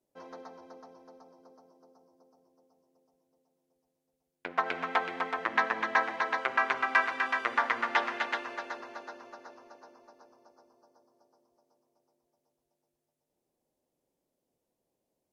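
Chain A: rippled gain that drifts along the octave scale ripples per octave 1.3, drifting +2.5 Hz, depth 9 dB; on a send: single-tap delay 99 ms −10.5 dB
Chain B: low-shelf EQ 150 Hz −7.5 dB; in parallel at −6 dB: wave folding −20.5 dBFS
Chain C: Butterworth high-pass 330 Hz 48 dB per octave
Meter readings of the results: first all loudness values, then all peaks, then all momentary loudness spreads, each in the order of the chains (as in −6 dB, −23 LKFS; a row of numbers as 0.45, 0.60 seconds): −28.5, −27.5, −30.0 LKFS; −9.0, −11.5, −9.5 dBFS; 21, 20, 21 LU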